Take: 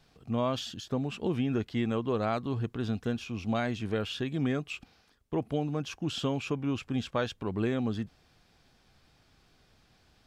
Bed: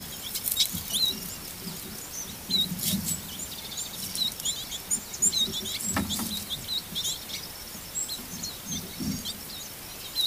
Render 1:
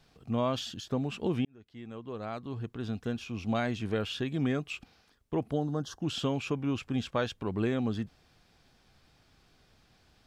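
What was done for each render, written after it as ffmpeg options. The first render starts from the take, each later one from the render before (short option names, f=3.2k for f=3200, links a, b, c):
-filter_complex "[0:a]asettb=1/sr,asplit=3[a][b][c];[a]atrim=end=5.514[d];[b]atrim=start=5.51:end=6,asetpts=PTS-STARTPTS,afade=t=in:d=0.004:c=qsin,afade=t=out:st=0.486:d=0.004:c=qsin,asuperstop=centerf=2400:order=4:qfactor=1.6[e];[c]atrim=start=5.996[f];[d][e]acrossfade=d=0.004:c1=hsin:c2=qsin[g];[g][f]acrossfade=d=0.004:c1=qsin:c2=hsin,asplit=2[h][i];[h]atrim=end=1.45,asetpts=PTS-STARTPTS,afade=t=out:st=1.446:d=0.004:c=hsin[j];[i]atrim=start=1.45,asetpts=PTS-STARTPTS,afade=t=in:d=2.12[k];[j][k]concat=n=2:v=0:a=1"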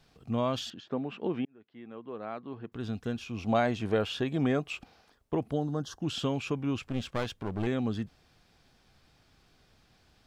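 -filter_complex "[0:a]asettb=1/sr,asplit=3[a][b][c];[a]atrim=end=0.704[d];[b]atrim=start=0.7:end=2.72,asetpts=PTS-STARTPTS,afade=t=in:d=0.004:c=qsin,afade=t=out:st=2.016:d=0.004:c=qsin,highpass=210,lowpass=2.5k[e];[c]atrim=start=2.716[f];[d][e]acrossfade=d=0.004:c1=hsin:c2=qsin[g];[g][f]acrossfade=d=0.004:c1=qsin:c2=hsin,asettb=1/sr,asplit=3[h][i][j];[h]atrim=end=3.384[k];[i]atrim=start=3.38:end=5.35,asetpts=PTS-STARTPTS,afade=t=in:d=0.004:c=qsin,afade=t=out:st=1.966:d=0.004:c=qsin,equalizer=f=690:w=0.79:g=7[l];[j]atrim=start=5.346[m];[k][l]acrossfade=d=0.004:c1=hsin:c2=qsin[n];[n][m]acrossfade=d=0.004:c1=qsin:c2=hsin,asettb=1/sr,asplit=3[o][p][q];[o]atrim=end=6.824[r];[p]atrim=start=6.82:end=7.67,asetpts=PTS-STARTPTS,afade=t=in:d=0.004:c=qsin,afade=t=out:st=0.846:d=0.004:c=qsin,aeval=exprs='clip(val(0),-1,0.015)':c=same[s];[q]atrim=start=7.666[t];[r][s]acrossfade=d=0.004:c1=hsin:c2=qsin[u];[u][t]acrossfade=d=0.004:c1=qsin:c2=hsin"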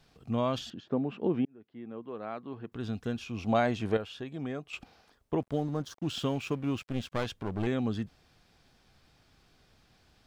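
-filter_complex "[0:a]asettb=1/sr,asplit=3[a][b][c];[a]atrim=end=0.584[d];[b]atrim=start=0.58:end=2.03,asetpts=PTS-STARTPTS,afade=t=in:d=0.004:c=qsin,afade=t=out:st=1.446:d=0.004:c=qsin,tiltshelf=f=820:g=4.5[e];[c]atrim=start=2.026[f];[d][e]acrossfade=d=0.004:c1=hsin:c2=qsin[g];[g][f]acrossfade=d=0.004:c1=qsin:c2=hsin,asettb=1/sr,asplit=3[h][i][j];[h]atrim=end=5.404[k];[i]atrim=start=5.4:end=7.12,asetpts=PTS-STARTPTS,afade=t=in:d=0.004:c=qsin,afade=t=out:st=1.716:d=0.004:c=qsin,aeval=exprs='sgn(val(0))*max(abs(val(0))-0.00251,0)':c=same[l];[j]atrim=start=7.116[m];[k][l]acrossfade=d=0.004:c1=hsin:c2=qsin[n];[n][m]acrossfade=d=0.004:c1=qsin:c2=hsin,asplit=3[o][p][q];[o]atrim=end=3.972[r];[p]atrim=start=3.968:end=4.732,asetpts=PTS-STARTPTS,volume=-9dB[s];[q]atrim=start=4.728[t];[r][s]acrossfade=d=0.004:c1=hsin:c2=hsin[u];[u][t]acrossfade=d=0.004:c1=hsin:c2=hsin"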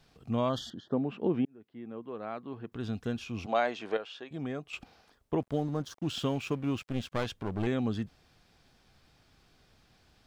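-filter_complex "[0:a]asettb=1/sr,asplit=3[a][b][c];[a]atrim=end=0.494[d];[b]atrim=start=0.49:end=0.94,asetpts=PTS-STARTPTS,afade=t=in:d=0.004:c=qsin,afade=t=out:st=0.446:d=0.004:c=qsin,asuperstop=centerf=2400:order=12:qfactor=2.3[e];[c]atrim=start=0.936[f];[d][e]acrossfade=d=0.004:c1=hsin:c2=qsin[g];[g][f]acrossfade=d=0.004:c1=qsin:c2=hsin,asettb=1/sr,asplit=3[h][i][j];[h]atrim=end=3.464[k];[i]atrim=start=3.46:end=4.31,asetpts=PTS-STARTPTS,afade=t=in:d=0.004:c=qsin,afade=t=out:st=0.846:d=0.004:c=qsin,highpass=430,lowpass=6k[l];[j]atrim=start=4.306[m];[k][l]acrossfade=d=0.004:c1=hsin:c2=qsin[n];[n][m]acrossfade=d=0.004:c1=qsin:c2=hsin"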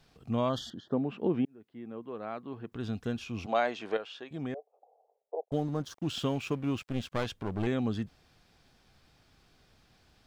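-filter_complex "[0:a]asettb=1/sr,asplit=3[a][b][c];[a]atrim=end=4.544[d];[b]atrim=start=4.54:end=5.52,asetpts=PTS-STARTPTS,afade=t=in:d=0.004:c=qsin,afade=t=out:st=0.976:d=0.004:c=qsin,asuperpass=centerf=600:order=8:qfactor=1.6[e];[c]atrim=start=5.516[f];[d][e]acrossfade=d=0.004:c1=hsin:c2=qsin[g];[g][f]acrossfade=d=0.004:c1=qsin:c2=hsin"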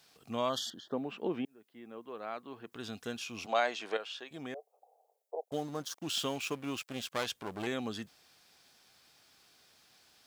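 -af "highpass=f=550:p=1,highshelf=f=4.9k:g=11.5"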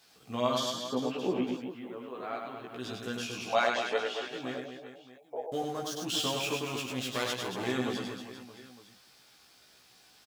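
-filter_complex "[0:a]asplit=2[a][b];[b]adelay=16,volume=-2dB[c];[a][c]amix=inputs=2:normalize=0,aecho=1:1:100|230|399|618.7|904.3:0.631|0.398|0.251|0.158|0.1"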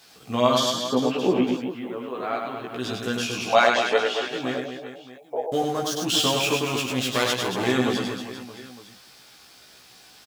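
-af "volume=9.5dB"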